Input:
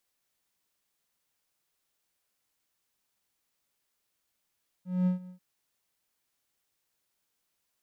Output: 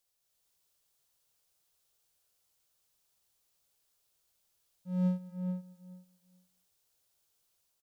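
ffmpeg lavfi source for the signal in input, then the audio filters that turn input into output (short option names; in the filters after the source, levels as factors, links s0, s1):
-f lavfi -i "aevalsrc='0.106*(1-4*abs(mod(182*t+0.25,1)-0.5))':d=0.541:s=44100,afade=t=in:d=0.214,afade=t=out:st=0.214:d=0.124:silence=0.0944,afade=t=out:st=0.44:d=0.101"
-filter_complex "[0:a]equalizer=f=250:t=o:w=1:g=-11,equalizer=f=1000:t=o:w=1:g=-4,equalizer=f=2000:t=o:w=1:g=-8,dynaudnorm=f=130:g=5:m=1.68,asplit=2[s0][s1];[s1]adelay=431,lowpass=f=2000:p=1,volume=0.501,asplit=2[s2][s3];[s3]adelay=431,lowpass=f=2000:p=1,volume=0.16,asplit=2[s4][s5];[s5]adelay=431,lowpass=f=2000:p=1,volume=0.16[s6];[s2][s4][s6]amix=inputs=3:normalize=0[s7];[s0][s7]amix=inputs=2:normalize=0"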